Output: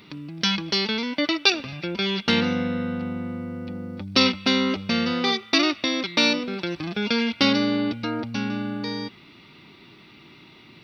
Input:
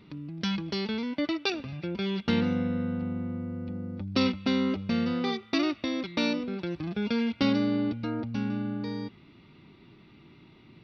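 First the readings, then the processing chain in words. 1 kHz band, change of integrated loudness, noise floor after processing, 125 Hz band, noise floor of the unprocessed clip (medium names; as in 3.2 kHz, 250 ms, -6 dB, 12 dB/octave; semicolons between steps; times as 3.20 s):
+8.0 dB, +6.5 dB, -50 dBFS, +1.0 dB, -55 dBFS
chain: tilt EQ +2.5 dB/octave; trim +8 dB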